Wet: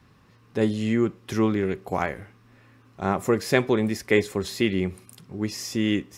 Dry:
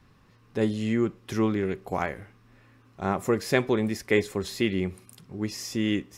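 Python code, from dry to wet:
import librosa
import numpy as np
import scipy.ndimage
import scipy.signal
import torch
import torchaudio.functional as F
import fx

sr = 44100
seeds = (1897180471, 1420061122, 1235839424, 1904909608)

y = scipy.signal.sosfilt(scipy.signal.butter(2, 47.0, 'highpass', fs=sr, output='sos'), x)
y = F.gain(torch.from_numpy(y), 2.5).numpy()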